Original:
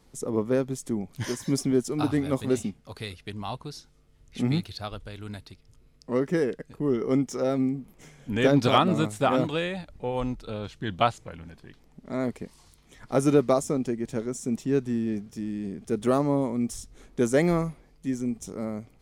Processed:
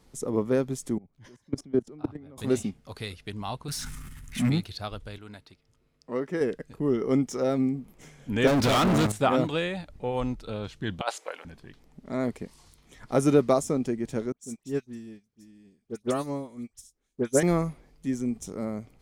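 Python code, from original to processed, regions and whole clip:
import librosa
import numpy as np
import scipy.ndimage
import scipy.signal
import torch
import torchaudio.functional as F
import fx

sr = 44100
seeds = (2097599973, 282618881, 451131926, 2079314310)

y = fx.chain(x, sr, fx.lowpass(hz=1400.0, slope=6),
    fx.level_steps(step_db=22),
    fx.band_widen(depth_pct=40), at=(0.98, 2.38))
y = fx.chain(y, sr, fx.curve_eq(hz=(240.0, 520.0, 920.0, 1700.0, 4400.0, 9100.0), db=(0, -29, -2, 6, -4, 8)),
    fx.power_curve(exponent=0.7),
    fx.sustainer(db_per_s=23.0), at=(3.68, 4.5))
y = fx.chain(y, sr, fx.lowpass(hz=1100.0, slope=6),
    fx.tilt_eq(slope=3.0), at=(5.18, 6.41))
y = fx.chain(y, sr, fx.level_steps(step_db=15),
    fx.leveller(passes=5), at=(8.47, 9.12))
y = fx.chain(y, sr, fx.highpass(hz=470.0, slope=24),
    fx.over_compress(threshold_db=-27.0, ratio=-0.5), at=(11.01, 11.45))
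y = fx.chain(y, sr, fx.high_shelf(hz=2500.0, db=9.5),
    fx.dispersion(late='highs', ms=81.0, hz=2100.0),
    fx.upward_expand(threshold_db=-37.0, expansion=2.5), at=(14.32, 17.43))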